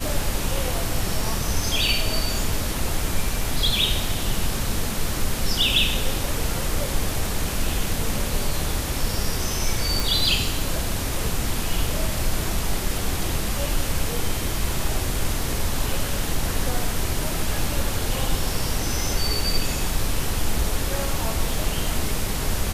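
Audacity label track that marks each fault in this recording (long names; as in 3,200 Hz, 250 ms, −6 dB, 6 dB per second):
10.000000	10.000000	click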